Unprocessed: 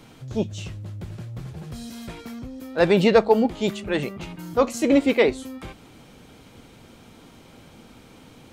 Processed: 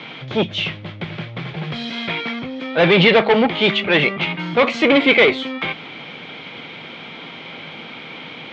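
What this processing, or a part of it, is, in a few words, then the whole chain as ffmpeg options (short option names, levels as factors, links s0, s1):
overdrive pedal into a guitar cabinet: -filter_complex "[0:a]asplit=2[s0][s1];[s1]highpass=f=720:p=1,volume=14.1,asoftclip=type=tanh:threshold=0.531[s2];[s0][s2]amix=inputs=2:normalize=0,lowpass=f=3700:p=1,volume=0.501,highpass=76,equalizer=f=85:t=q:w=4:g=-7,equalizer=f=160:t=q:w=4:g=8,equalizer=f=2200:t=q:w=4:g=10,equalizer=f=3300:t=q:w=4:g=8,lowpass=f=4200:w=0.5412,lowpass=f=4200:w=1.3066,volume=0.891"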